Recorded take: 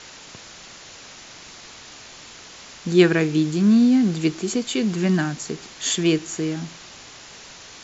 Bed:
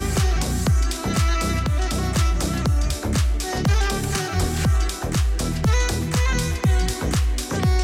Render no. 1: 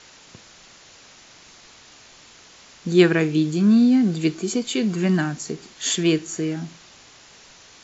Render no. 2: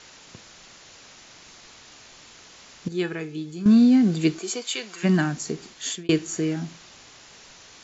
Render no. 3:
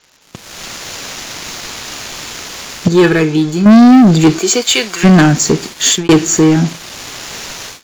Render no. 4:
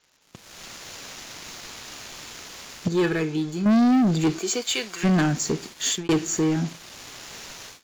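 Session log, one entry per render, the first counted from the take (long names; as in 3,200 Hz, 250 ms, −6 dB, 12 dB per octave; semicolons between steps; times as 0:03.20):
noise reduction from a noise print 6 dB
0:02.88–0:03.66: tuned comb filter 430 Hz, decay 0.19 s, mix 80%; 0:04.38–0:05.03: high-pass filter 450 Hz → 1,100 Hz; 0:05.68–0:06.09: fade out
automatic gain control gain up to 12.5 dB; leveller curve on the samples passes 3
level −13.5 dB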